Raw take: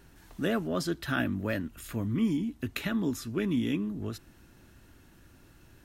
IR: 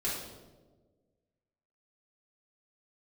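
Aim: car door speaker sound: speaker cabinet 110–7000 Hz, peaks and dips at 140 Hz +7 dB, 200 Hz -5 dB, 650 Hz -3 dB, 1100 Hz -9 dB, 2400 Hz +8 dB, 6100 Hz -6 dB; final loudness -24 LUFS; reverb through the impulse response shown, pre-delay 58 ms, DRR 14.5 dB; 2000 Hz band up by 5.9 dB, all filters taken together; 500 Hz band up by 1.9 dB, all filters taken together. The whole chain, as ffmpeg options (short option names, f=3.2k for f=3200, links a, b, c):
-filter_complex "[0:a]equalizer=f=500:t=o:g=3.5,equalizer=f=2k:t=o:g=5.5,asplit=2[a][b];[1:a]atrim=start_sample=2205,adelay=58[c];[b][c]afir=irnorm=-1:irlink=0,volume=-20dB[d];[a][d]amix=inputs=2:normalize=0,highpass=110,equalizer=f=140:t=q:w=4:g=7,equalizer=f=200:t=q:w=4:g=-5,equalizer=f=650:t=q:w=4:g=-3,equalizer=f=1.1k:t=q:w=4:g=-9,equalizer=f=2.4k:t=q:w=4:g=8,equalizer=f=6.1k:t=q:w=4:g=-6,lowpass=f=7k:w=0.5412,lowpass=f=7k:w=1.3066,volume=6.5dB"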